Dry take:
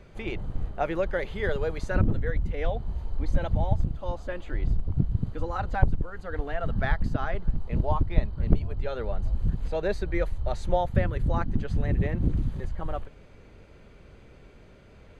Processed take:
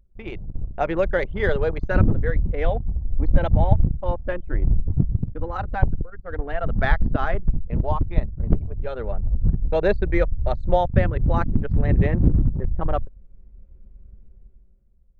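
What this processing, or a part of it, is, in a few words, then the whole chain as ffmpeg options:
voice memo with heavy noise removal: -filter_complex "[0:a]asettb=1/sr,asplit=3[a][b][c];[a]atrim=end=6.234[d];[b]atrim=start=6.23:end=7.29,asetpts=PTS-STARTPTS,afade=t=in:d=0.004:c=qsin,afade=t=out:st=1.056:d=0.004:c=qsin,adynamicequalizer=threshold=0.00794:dfrequency=130:dqfactor=1.1:tfrequency=130:tqfactor=1.1:attack=5:release=100:ratio=0.375:range=3:mode=cutabove:tftype=bell[e];[c]atrim=start=7.286[f];[d][e]acrossfade=d=0.004:c1=hsin:c2=qsin[g];[g][f]acrossfade=d=0.004:c1=qsin:c2=hsin,anlmdn=3.98,dynaudnorm=f=140:g=13:m=14.5dB,volume=-1dB"

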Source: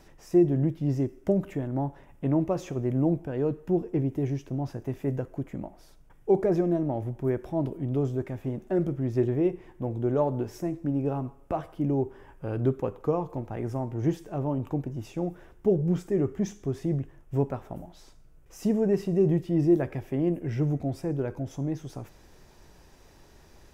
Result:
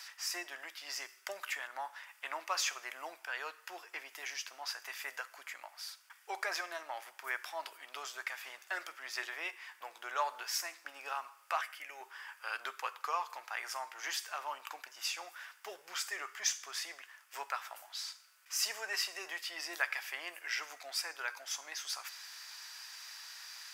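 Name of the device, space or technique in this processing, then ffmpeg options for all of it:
headphones lying on a table: -filter_complex "[0:a]highpass=f=1.3k:w=0.5412,highpass=f=1.3k:w=1.3066,equalizer=f=4.7k:t=o:w=0.31:g=8.5,asettb=1/sr,asplit=3[a][b][c];[a]atrim=end=11.614[d];[b]atrim=start=11.61:end=12.01,asetpts=PTS-STARTPTS,afade=t=in:d=0.004:c=qsin,afade=t=out:st=0.396:d=0.004:c=qsin,equalizer=f=250:t=o:w=1:g=-9,equalizer=f=1k:t=o:w=1:g=-10,equalizer=f=2k:t=o:w=1:g=9,equalizer=f=4k:t=o:w=1:g=-8[e];[c]atrim=start=12.006[f];[d][e]acrossfade=d=0.004:c1=hsin:c2=qsin[g];[g][f]acrossfade=d=0.004:c1=qsin:c2=hsin,volume=12dB"

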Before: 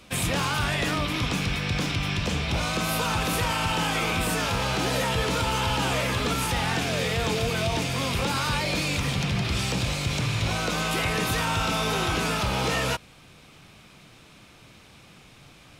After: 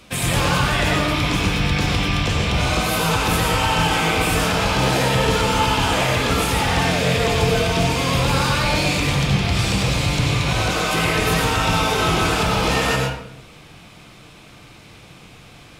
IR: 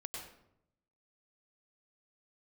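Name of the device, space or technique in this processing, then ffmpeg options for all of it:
bathroom: -filter_complex "[1:a]atrim=start_sample=2205[a];[0:a][a]afir=irnorm=-1:irlink=0,volume=8.5dB"

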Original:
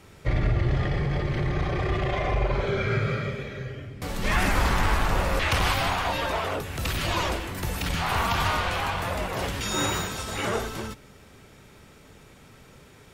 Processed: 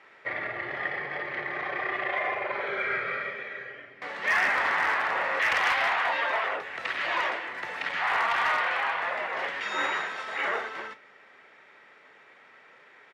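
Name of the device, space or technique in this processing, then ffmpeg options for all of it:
megaphone: -filter_complex "[0:a]asettb=1/sr,asplit=3[a][b][c];[a]atrim=end=5.554[d];[b]atrim=start=5.55:end=6.49,asetpts=PTS-STARTPTS,afade=t=in:d=0.004:c=qsin,afade=t=out:st=0.936:d=0.004:c=qsin,highshelf=f=2.2k:g=2[e];[c]atrim=start=6.486[f];[d][e]acrossfade=d=0.004:c1=hsin:c2=qsin[g];[g][f]acrossfade=d=0.004:c1=qsin:c2=hsin,highpass=630,lowpass=2.5k,equalizer=f=1.9k:t=o:w=0.45:g=9,asoftclip=type=hard:threshold=-18.5dB,asplit=2[h][i];[i]adelay=34,volume=-14dB[j];[h][j]amix=inputs=2:normalize=0"

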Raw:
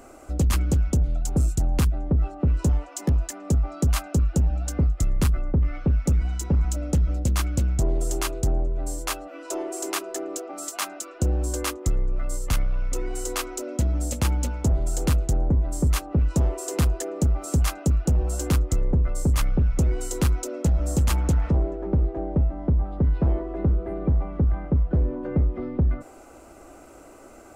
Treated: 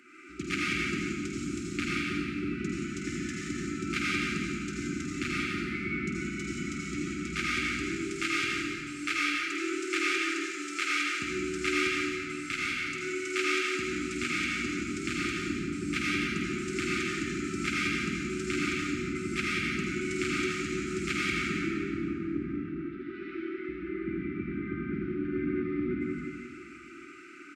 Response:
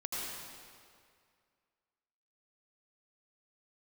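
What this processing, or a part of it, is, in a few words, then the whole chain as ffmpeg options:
station announcement: -filter_complex "[0:a]asettb=1/sr,asplit=3[a][b][c];[a]atrim=end=22.604[d];[b]atrim=start=22.6:end=23.69,asetpts=PTS-STARTPTS,afade=t=in:d=0.004:c=qsin,afade=t=out:st=1.086:d=0.004:c=qsin,highpass=f=340:w=0.5412,highpass=f=340:w=1.3066[e];[c]atrim=start=23.686[f];[d][e]acrossfade=d=0.004:c1=hsin:c2=qsin[g];[g][f]acrossfade=d=0.004:c1=qsin:c2=hsin,highpass=360,lowpass=4k,equalizer=f=2.3k:t=o:w=0.36:g=12,aecho=1:1:49.56|174.9:0.447|0.447[h];[1:a]atrim=start_sample=2205[i];[h][i]afir=irnorm=-1:irlink=0,afftfilt=real='re*(1-between(b*sr/4096,390,1200))':imag='im*(1-between(b*sr/4096,390,1200))':win_size=4096:overlap=0.75"

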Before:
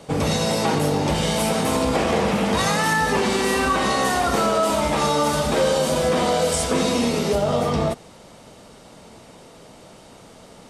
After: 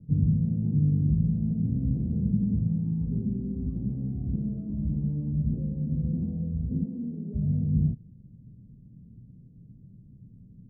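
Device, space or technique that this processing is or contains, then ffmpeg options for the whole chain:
the neighbour's flat through the wall: -filter_complex "[0:a]lowpass=f=200:w=0.5412,lowpass=f=200:w=1.3066,equalizer=f=120:t=o:w=0.65:g=7,asplit=3[a][b][c];[a]afade=t=out:st=6.84:d=0.02[d];[b]highpass=270,afade=t=in:st=6.84:d=0.02,afade=t=out:st=7.34:d=0.02[e];[c]afade=t=in:st=7.34:d=0.02[f];[d][e][f]amix=inputs=3:normalize=0"

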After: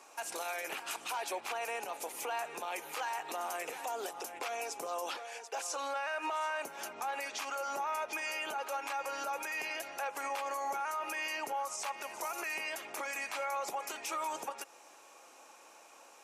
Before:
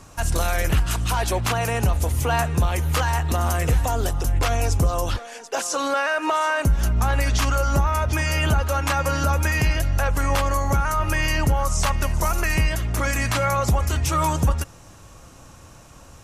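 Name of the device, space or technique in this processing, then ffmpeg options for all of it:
laptop speaker: -af "highpass=f=370:w=0.5412,highpass=f=370:w=1.3066,equalizer=f=830:t=o:w=0.27:g=7,equalizer=f=2.4k:t=o:w=0.24:g=8,alimiter=limit=-20dB:level=0:latency=1:release=121,volume=-8.5dB"

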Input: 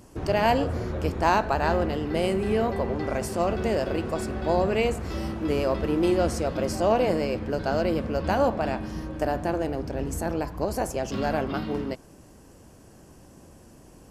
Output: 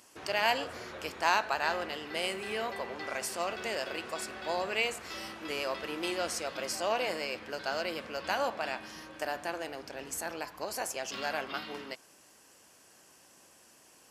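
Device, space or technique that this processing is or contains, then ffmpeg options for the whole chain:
filter by subtraction: -filter_complex "[0:a]asplit=2[a][b];[b]lowpass=2.6k,volume=-1[c];[a][c]amix=inputs=2:normalize=0"

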